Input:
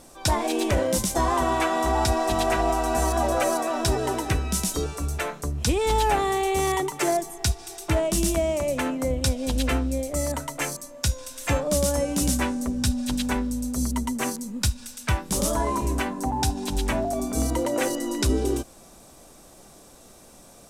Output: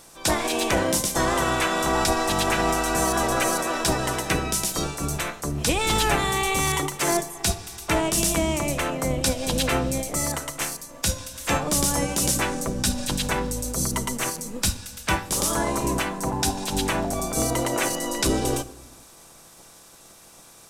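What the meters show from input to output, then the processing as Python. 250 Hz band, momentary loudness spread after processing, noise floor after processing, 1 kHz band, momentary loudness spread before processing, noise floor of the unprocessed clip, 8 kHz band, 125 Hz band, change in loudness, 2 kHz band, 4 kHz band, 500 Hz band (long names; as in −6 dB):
−0.5 dB, 6 LU, −49 dBFS, +0.5 dB, 5 LU, −50 dBFS, +4.5 dB, −1.0 dB, +1.5 dB, +4.5 dB, +4.5 dB, −1.0 dB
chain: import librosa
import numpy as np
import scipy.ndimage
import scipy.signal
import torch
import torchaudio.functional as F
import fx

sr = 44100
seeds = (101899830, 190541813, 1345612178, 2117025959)

y = fx.spec_clip(x, sr, under_db=15)
y = fx.room_shoebox(y, sr, seeds[0], volume_m3=2400.0, walls='furnished', distance_m=0.71)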